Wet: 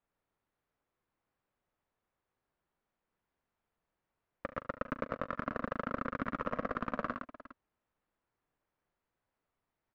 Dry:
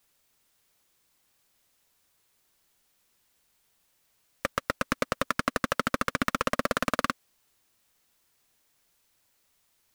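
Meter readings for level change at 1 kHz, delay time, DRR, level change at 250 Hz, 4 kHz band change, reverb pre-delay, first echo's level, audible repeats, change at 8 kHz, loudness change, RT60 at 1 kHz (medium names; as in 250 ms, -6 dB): -8.0 dB, 40 ms, no reverb, -6.5 dB, -22.5 dB, no reverb, -14.0 dB, 4, under -30 dB, -9.0 dB, no reverb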